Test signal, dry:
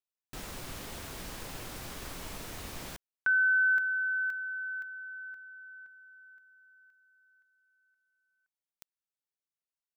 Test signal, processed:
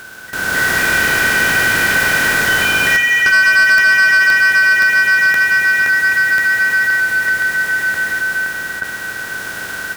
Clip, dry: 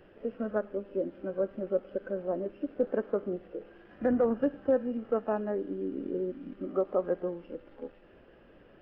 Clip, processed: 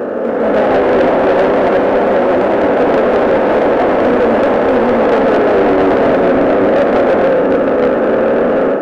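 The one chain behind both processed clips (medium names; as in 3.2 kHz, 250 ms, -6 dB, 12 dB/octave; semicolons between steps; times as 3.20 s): spectral levelling over time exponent 0.2; in parallel at -5 dB: hard clipper -21 dBFS; on the sum: flange 0.43 Hz, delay 8.3 ms, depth 5.4 ms, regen -37%; ever faster or slower copies 281 ms, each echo +4 st, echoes 3, each echo -6 dB; level rider gain up to 11 dB; high-pass 170 Hz 6 dB/octave; shuffle delay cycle 1155 ms, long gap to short 3:1, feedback 54%, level -18 dB; saturation -14 dBFS; trim +7.5 dB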